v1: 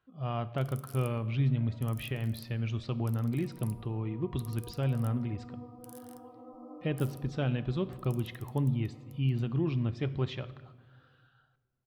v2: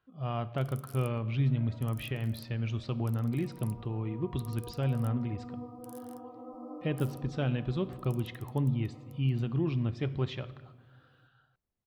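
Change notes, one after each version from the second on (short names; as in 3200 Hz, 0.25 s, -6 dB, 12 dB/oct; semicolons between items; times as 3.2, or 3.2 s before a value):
first sound: send off; second sound +4.0 dB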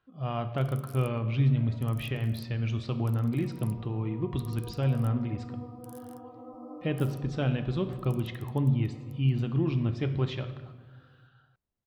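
speech: send +7.5 dB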